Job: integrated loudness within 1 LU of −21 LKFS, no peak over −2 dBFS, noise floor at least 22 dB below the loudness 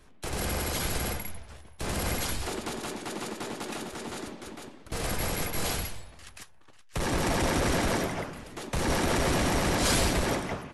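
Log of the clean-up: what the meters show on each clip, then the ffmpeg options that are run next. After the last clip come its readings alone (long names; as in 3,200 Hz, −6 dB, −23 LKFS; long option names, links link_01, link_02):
integrated loudness −30.0 LKFS; sample peak −16.5 dBFS; target loudness −21.0 LKFS
→ -af "volume=9dB"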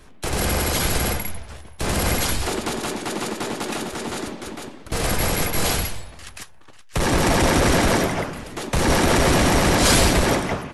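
integrated loudness −21.0 LKFS; sample peak −7.5 dBFS; background noise floor −43 dBFS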